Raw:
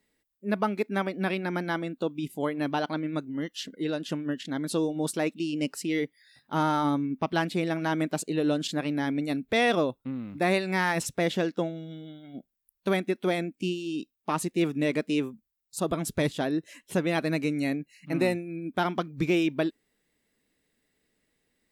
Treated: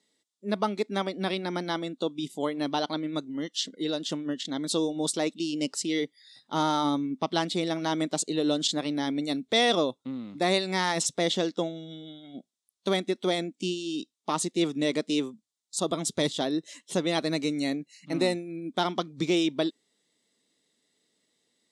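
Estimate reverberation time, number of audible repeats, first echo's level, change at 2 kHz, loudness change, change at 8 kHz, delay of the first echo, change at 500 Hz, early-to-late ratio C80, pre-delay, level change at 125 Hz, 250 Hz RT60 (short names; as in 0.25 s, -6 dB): none, none, none, -3.0 dB, 0.0 dB, +6.0 dB, none, 0.0 dB, none, none, -4.0 dB, none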